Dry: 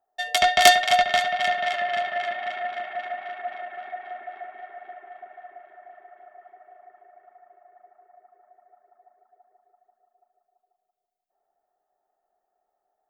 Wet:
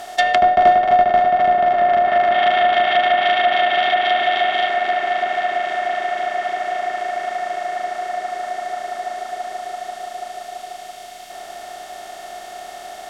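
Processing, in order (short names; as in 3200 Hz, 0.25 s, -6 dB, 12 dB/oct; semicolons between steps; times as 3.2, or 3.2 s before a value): per-bin compression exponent 0.4; treble ducked by the level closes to 840 Hz, closed at -13 dBFS; 2.32–4.69 bell 3300 Hz +8.5 dB 0.5 oct; gain +4.5 dB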